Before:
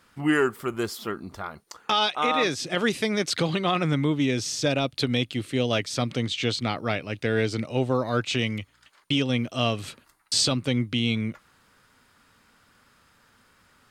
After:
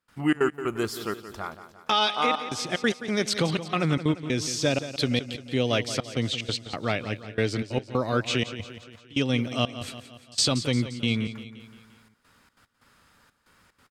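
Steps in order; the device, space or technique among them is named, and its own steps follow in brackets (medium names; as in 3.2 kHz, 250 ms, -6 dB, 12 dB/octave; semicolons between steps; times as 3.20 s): trance gate with a delay (trance gate ".xxx.x..xxxxxx." 185 bpm -24 dB; feedback delay 174 ms, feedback 53%, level -12.5 dB)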